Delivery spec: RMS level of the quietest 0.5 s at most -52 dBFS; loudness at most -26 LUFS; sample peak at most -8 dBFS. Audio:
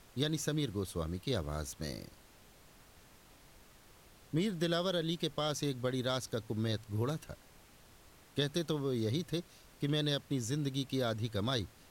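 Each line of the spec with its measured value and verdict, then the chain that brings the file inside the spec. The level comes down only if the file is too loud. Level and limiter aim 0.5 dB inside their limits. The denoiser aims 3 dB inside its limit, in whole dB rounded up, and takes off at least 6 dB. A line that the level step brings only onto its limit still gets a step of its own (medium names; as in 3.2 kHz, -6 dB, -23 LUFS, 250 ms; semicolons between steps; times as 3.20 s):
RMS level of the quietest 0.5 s -60 dBFS: pass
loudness -36.0 LUFS: pass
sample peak -18.5 dBFS: pass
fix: none needed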